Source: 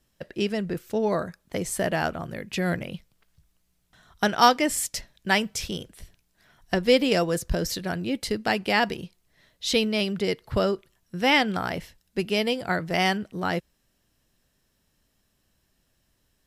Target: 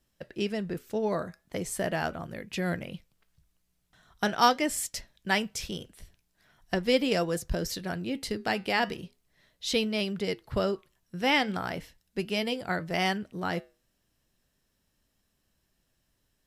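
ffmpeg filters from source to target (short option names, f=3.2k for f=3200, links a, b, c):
-af "flanger=delay=3.1:depth=4.2:regen=-86:speed=0.4:shape=triangular"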